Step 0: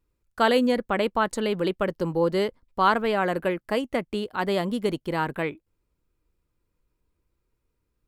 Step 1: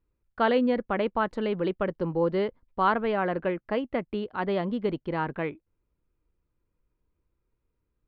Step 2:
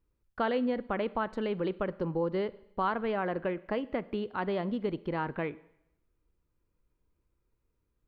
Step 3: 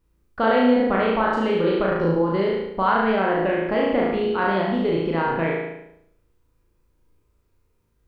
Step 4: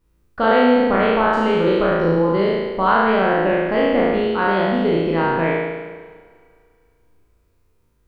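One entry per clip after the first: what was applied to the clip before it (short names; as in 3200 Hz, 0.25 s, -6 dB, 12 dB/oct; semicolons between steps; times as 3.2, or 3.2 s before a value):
air absorption 320 m; gain -1.5 dB
compressor 2:1, threshold -31 dBFS, peak gain reduction 7.5 dB; on a send at -18.5 dB: reverb RT60 0.85 s, pre-delay 32 ms
spectral trails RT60 0.64 s; on a send: flutter echo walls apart 6.2 m, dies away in 0.66 s; on the sum: gain +6 dB
spectral trails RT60 1.29 s; Schroeder reverb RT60 2.6 s, combs from 26 ms, DRR 17 dB; gain +1.5 dB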